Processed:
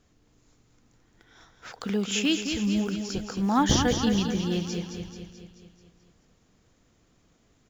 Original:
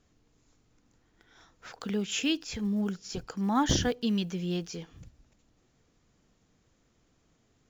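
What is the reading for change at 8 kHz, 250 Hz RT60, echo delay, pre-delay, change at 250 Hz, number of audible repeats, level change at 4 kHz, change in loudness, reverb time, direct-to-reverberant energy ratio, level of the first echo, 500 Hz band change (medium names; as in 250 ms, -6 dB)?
no reading, no reverb, 217 ms, no reverb, +4.5 dB, 6, +4.5 dB, +4.0 dB, no reverb, no reverb, -7.0 dB, +4.5 dB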